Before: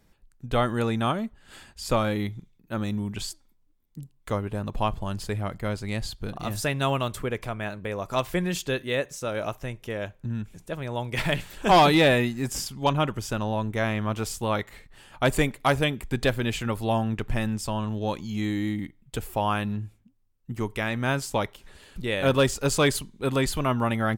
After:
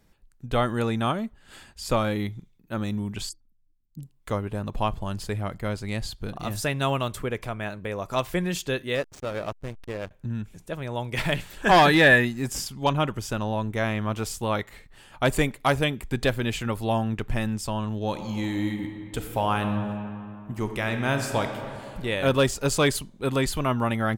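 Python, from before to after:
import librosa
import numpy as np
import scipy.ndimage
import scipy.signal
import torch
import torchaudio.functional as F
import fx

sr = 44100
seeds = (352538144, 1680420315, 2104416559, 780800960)

y = fx.envelope_sharpen(x, sr, power=2.0, at=(3.29, 3.99))
y = fx.backlash(y, sr, play_db=-29.0, at=(8.95, 10.11))
y = fx.peak_eq(y, sr, hz=1700.0, db=14.0, octaves=0.23, at=(11.62, 12.25))
y = fx.reverb_throw(y, sr, start_s=18.07, length_s=3.96, rt60_s=2.6, drr_db=5.5)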